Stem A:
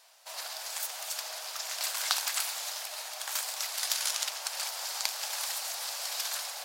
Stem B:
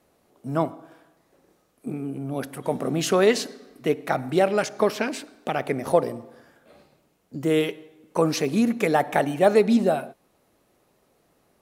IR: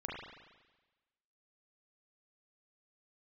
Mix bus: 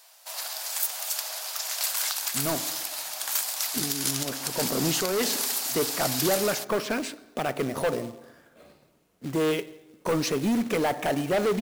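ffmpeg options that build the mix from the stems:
-filter_complex "[0:a]highshelf=frequency=11000:gain=12,volume=2.5dB[link_01];[1:a]bandreject=frequency=820:width=12,asoftclip=type=tanh:threshold=-19dB,acrusher=bits=3:mode=log:mix=0:aa=0.000001,adelay=1900,volume=0dB[link_02];[link_01][link_02]amix=inputs=2:normalize=0,alimiter=limit=-11.5dB:level=0:latency=1:release=223"

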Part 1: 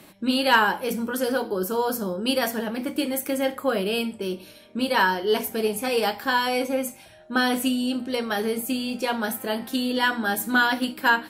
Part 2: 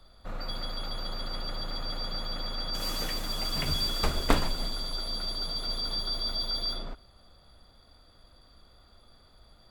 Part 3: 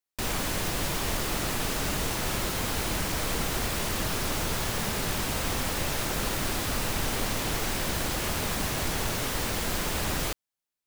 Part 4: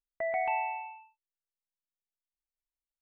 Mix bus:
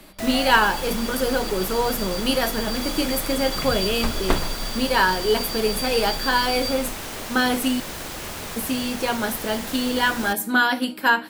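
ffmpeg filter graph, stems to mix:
ffmpeg -i stem1.wav -i stem2.wav -i stem3.wav -i stem4.wav -filter_complex "[0:a]highpass=130,volume=1.5dB,asplit=3[link_01][link_02][link_03];[link_01]atrim=end=7.8,asetpts=PTS-STARTPTS,afade=type=out:start_time=7.796:duration=0.004:curve=hsin[link_04];[link_02]atrim=start=7.8:end=8.56,asetpts=PTS-STARTPTS,volume=0[link_05];[link_03]atrim=start=8.56,asetpts=PTS-STARTPTS,afade=type=in:duration=0.004:curve=hsin[link_06];[link_04][link_05][link_06]concat=n=3:v=0:a=1[link_07];[1:a]volume=2dB[link_08];[2:a]acrossover=split=220|3000[link_09][link_10][link_11];[link_09]acompressor=threshold=-35dB:ratio=6[link_12];[link_12][link_10][link_11]amix=inputs=3:normalize=0,volume=-2.5dB[link_13];[3:a]volume=-1dB[link_14];[link_07][link_08][link_13][link_14]amix=inputs=4:normalize=0" out.wav

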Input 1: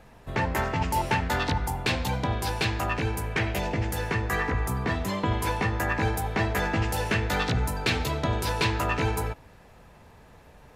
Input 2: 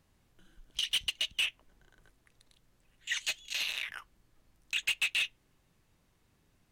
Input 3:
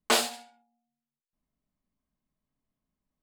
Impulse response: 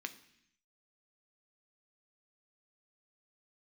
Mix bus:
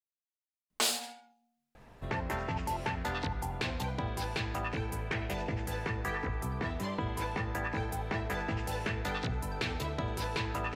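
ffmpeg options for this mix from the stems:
-filter_complex "[0:a]adelay=1750,volume=-3.5dB[link_01];[2:a]alimiter=limit=-15.5dB:level=0:latency=1:release=422,acrossover=split=130|3000[link_02][link_03][link_04];[link_03]acompressor=threshold=-36dB:ratio=6[link_05];[link_02][link_05][link_04]amix=inputs=3:normalize=0,adelay=700,volume=2.5dB,asplit=2[link_06][link_07];[link_07]volume=-17dB[link_08];[link_01]highshelf=frequency=6900:gain=-6,acompressor=threshold=-32dB:ratio=3,volume=0dB[link_09];[3:a]atrim=start_sample=2205[link_10];[link_08][link_10]afir=irnorm=-1:irlink=0[link_11];[link_06][link_09][link_11]amix=inputs=3:normalize=0"

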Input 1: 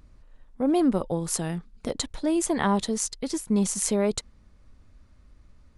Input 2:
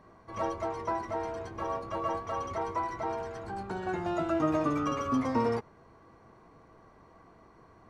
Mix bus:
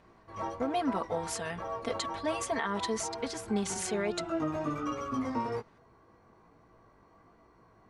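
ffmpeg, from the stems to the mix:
ffmpeg -i stem1.wav -i stem2.wav -filter_complex "[0:a]bandpass=frequency=1600:width_type=q:width=0.69:csg=0,aecho=1:1:4.4:0.97,volume=1dB[link_01];[1:a]flanger=delay=16.5:depth=4:speed=1.2,volume=-1dB[link_02];[link_01][link_02]amix=inputs=2:normalize=0,alimiter=limit=-21dB:level=0:latency=1:release=243" out.wav

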